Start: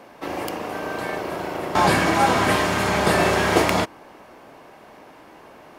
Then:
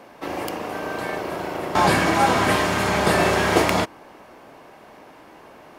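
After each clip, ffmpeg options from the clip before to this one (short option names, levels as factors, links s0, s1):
-af anull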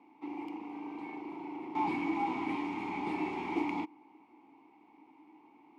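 -filter_complex "[0:a]aeval=exprs='clip(val(0),-1,0.15)':c=same,asplit=3[s0][s1][s2];[s0]bandpass=f=300:t=q:w=8,volume=1[s3];[s1]bandpass=f=870:t=q:w=8,volume=0.501[s4];[s2]bandpass=f=2240:t=q:w=8,volume=0.355[s5];[s3][s4][s5]amix=inputs=3:normalize=0,volume=0.708"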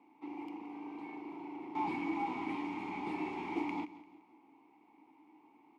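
-af "aecho=1:1:172|344|516:0.15|0.0598|0.0239,volume=0.668"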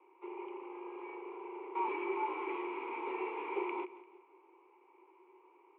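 -af "highpass=f=280:t=q:w=0.5412,highpass=f=280:t=q:w=1.307,lowpass=f=2800:t=q:w=0.5176,lowpass=f=2800:t=q:w=0.7071,lowpass=f=2800:t=q:w=1.932,afreqshift=64,volume=1.12"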